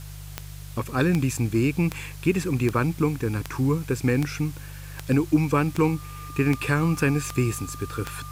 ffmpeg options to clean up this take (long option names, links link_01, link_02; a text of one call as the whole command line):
ffmpeg -i in.wav -af "adeclick=threshold=4,bandreject=frequency=49.6:width_type=h:width=4,bandreject=frequency=99.2:width_type=h:width=4,bandreject=frequency=148.8:width_type=h:width=4,bandreject=frequency=1200:width=30,afwtdn=0.0045" out.wav